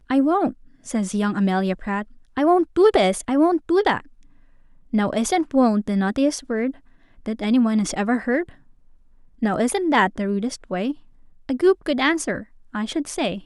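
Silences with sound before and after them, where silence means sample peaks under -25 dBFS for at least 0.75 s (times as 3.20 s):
3.98–4.94 s
8.42–9.42 s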